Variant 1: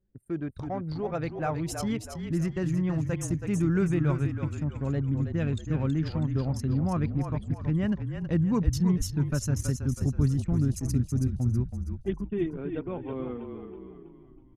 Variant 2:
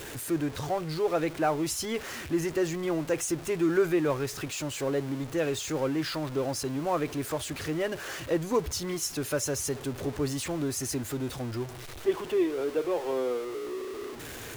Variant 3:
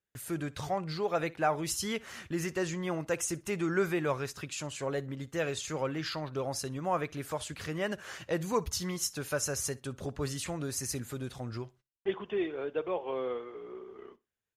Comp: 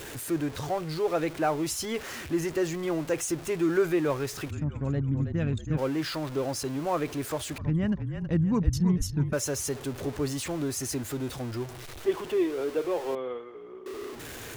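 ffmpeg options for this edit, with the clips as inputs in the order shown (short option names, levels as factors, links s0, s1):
-filter_complex "[0:a]asplit=2[s0][s1];[1:a]asplit=4[s2][s3][s4][s5];[s2]atrim=end=4.51[s6];[s0]atrim=start=4.49:end=5.79[s7];[s3]atrim=start=5.77:end=7.582[s8];[s1]atrim=start=7.578:end=9.332[s9];[s4]atrim=start=9.328:end=13.152[s10];[2:a]atrim=start=13.148:end=13.862[s11];[s5]atrim=start=13.858[s12];[s6][s7]acrossfade=d=0.02:c1=tri:c2=tri[s13];[s13][s8]acrossfade=d=0.02:c1=tri:c2=tri[s14];[s14][s9]acrossfade=d=0.004:c1=hsin:c2=hsin[s15];[s15][s10]acrossfade=d=0.004:c1=hsin:c2=hsin[s16];[s16][s11]acrossfade=d=0.004:c1=hsin:c2=hsin[s17];[s17][s12]acrossfade=d=0.004:c1=hsin:c2=hsin"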